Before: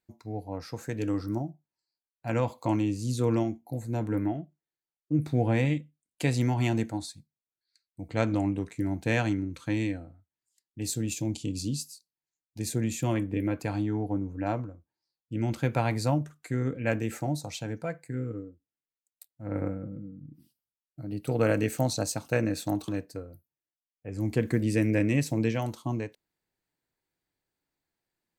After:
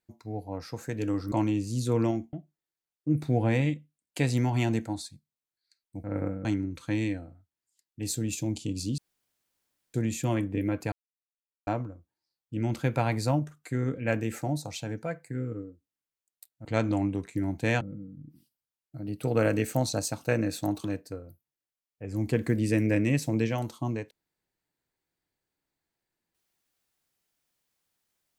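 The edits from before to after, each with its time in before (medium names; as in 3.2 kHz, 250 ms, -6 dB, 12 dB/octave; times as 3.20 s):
1.32–2.64 s: delete
3.65–4.37 s: delete
8.08–9.24 s: swap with 19.44–19.85 s
11.77–12.73 s: room tone
13.71–14.46 s: mute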